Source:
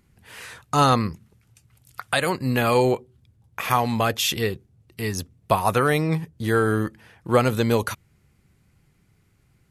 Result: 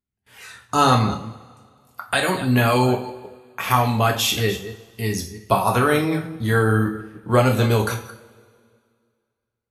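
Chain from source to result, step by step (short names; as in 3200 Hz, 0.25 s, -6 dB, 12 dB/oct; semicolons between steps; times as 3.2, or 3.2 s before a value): reverse delay 0.163 s, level -13 dB; spectral noise reduction 9 dB; gate with hold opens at -51 dBFS; two-slope reverb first 0.4 s, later 2.1 s, from -22 dB, DRR 1 dB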